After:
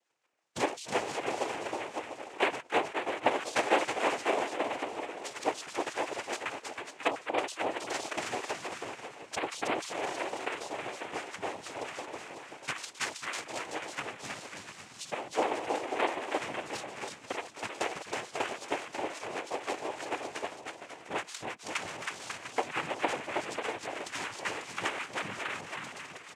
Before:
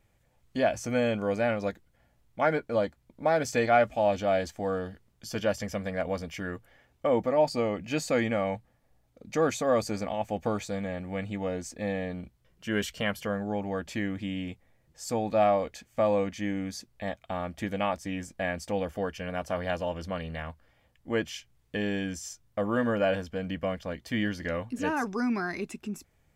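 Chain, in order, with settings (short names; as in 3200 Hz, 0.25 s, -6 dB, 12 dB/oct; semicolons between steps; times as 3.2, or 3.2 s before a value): random spectral dropouts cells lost 32%; HPF 720 Hz 12 dB/oct; echo 0.531 s -18 dB; in parallel at 0 dB: compressor, threshold -39 dBFS, peak gain reduction 18 dB; on the sum: Bessel low-pass 5700 Hz; transient shaper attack +11 dB, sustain +7 dB; on a send: bouncing-ball echo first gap 0.32 s, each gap 0.7×, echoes 5; on the sum: noise vocoder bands 4; gain -8.5 dB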